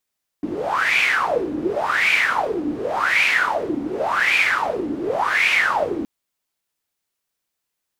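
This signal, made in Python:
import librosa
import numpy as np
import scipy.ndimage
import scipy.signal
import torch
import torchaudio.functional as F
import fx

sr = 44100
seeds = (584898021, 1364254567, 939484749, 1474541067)

y = fx.wind(sr, seeds[0], length_s=5.62, low_hz=290.0, high_hz=2400.0, q=9.2, gusts=5, swing_db=8)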